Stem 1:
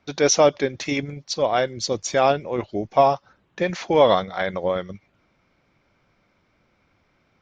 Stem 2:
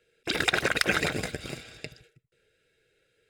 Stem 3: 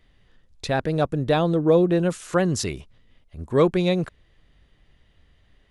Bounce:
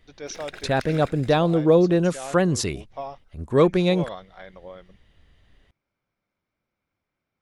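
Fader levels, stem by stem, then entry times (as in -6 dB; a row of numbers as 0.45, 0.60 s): -18.0, -15.5, +1.0 dB; 0.00, 0.00, 0.00 s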